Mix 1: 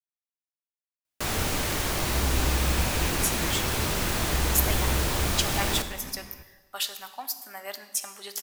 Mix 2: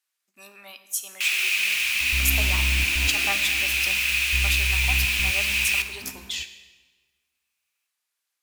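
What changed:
speech: entry −2.30 s
first sound: add high-pass with resonance 2,500 Hz, resonance Q 9.9
second sound: send on

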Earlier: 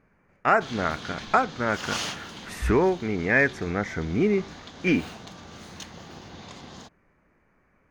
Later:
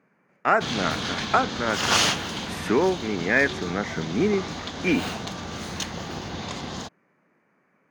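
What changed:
speech: add high-pass filter 150 Hz 24 dB per octave
background +10.0 dB

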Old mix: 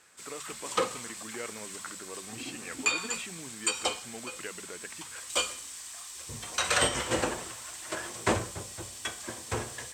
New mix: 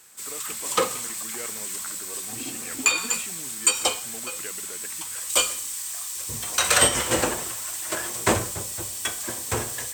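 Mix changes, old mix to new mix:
background +5.0 dB
master: remove high-frequency loss of the air 54 metres

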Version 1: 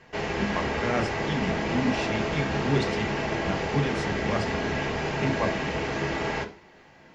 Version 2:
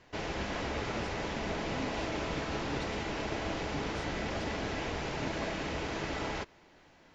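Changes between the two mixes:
speech −9.5 dB
reverb: off

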